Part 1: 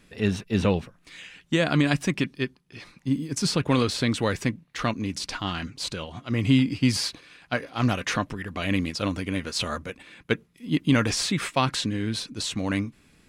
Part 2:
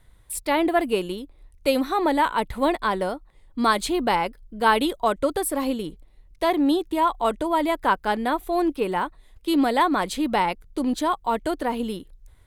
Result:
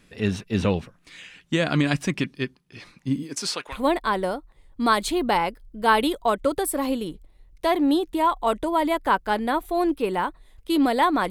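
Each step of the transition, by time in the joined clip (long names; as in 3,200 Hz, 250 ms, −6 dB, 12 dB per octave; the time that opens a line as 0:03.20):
part 1
0:03.22–0:03.80: high-pass filter 200 Hz → 1,300 Hz
0:03.73: continue with part 2 from 0:02.51, crossfade 0.14 s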